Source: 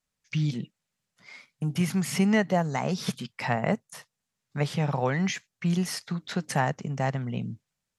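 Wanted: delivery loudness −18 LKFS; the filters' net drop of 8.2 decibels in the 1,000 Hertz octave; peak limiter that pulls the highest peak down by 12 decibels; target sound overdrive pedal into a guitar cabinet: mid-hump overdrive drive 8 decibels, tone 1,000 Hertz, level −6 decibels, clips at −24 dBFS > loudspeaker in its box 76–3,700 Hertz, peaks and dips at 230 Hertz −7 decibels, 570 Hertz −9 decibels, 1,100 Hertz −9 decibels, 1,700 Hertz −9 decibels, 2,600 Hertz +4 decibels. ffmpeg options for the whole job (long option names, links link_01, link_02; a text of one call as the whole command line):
ffmpeg -i in.wav -filter_complex "[0:a]equalizer=frequency=1000:width_type=o:gain=-7,alimiter=limit=-24dB:level=0:latency=1,asplit=2[link_01][link_02];[link_02]highpass=frequency=720:poles=1,volume=8dB,asoftclip=type=tanh:threshold=-24dB[link_03];[link_01][link_03]amix=inputs=2:normalize=0,lowpass=frequency=1000:poles=1,volume=-6dB,highpass=76,equalizer=frequency=230:width_type=q:width=4:gain=-7,equalizer=frequency=570:width_type=q:width=4:gain=-9,equalizer=frequency=1100:width_type=q:width=4:gain=-9,equalizer=frequency=1700:width_type=q:width=4:gain=-9,equalizer=frequency=2600:width_type=q:width=4:gain=4,lowpass=frequency=3700:width=0.5412,lowpass=frequency=3700:width=1.3066,volume=22.5dB" out.wav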